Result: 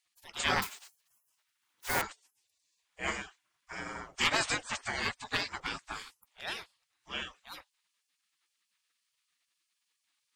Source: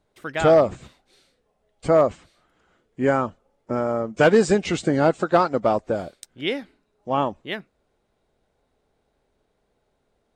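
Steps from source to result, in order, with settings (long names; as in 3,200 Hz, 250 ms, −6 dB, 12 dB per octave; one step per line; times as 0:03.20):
0:00.62–0:02.02: one scale factor per block 5 bits
gate on every frequency bin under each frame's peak −25 dB weak
level +5 dB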